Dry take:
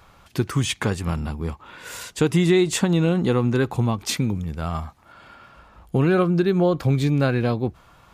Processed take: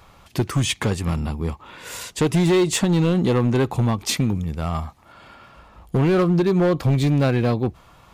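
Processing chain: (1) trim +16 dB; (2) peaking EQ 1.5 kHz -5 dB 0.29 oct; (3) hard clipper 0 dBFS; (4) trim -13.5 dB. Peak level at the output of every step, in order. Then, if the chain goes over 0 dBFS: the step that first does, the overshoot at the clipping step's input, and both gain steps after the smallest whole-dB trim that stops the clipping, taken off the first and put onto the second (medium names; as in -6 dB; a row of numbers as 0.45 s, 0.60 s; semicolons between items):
+7.5 dBFS, +7.5 dBFS, 0.0 dBFS, -13.5 dBFS; step 1, 7.5 dB; step 1 +8 dB, step 4 -5.5 dB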